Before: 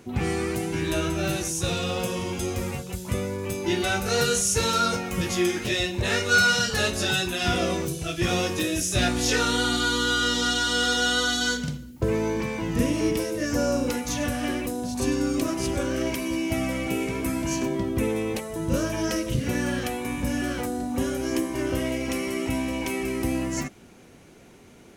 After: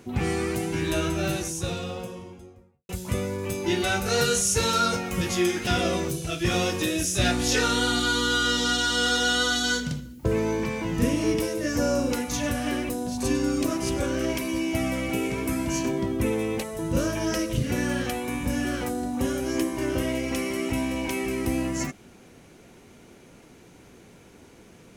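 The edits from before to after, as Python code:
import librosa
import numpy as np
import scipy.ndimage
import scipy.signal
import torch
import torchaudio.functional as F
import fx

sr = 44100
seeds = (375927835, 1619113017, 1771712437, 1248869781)

y = fx.studio_fade_out(x, sr, start_s=1.09, length_s=1.8)
y = fx.edit(y, sr, fx.cut(start_s=5.67, length_s=1.77), tone=tone)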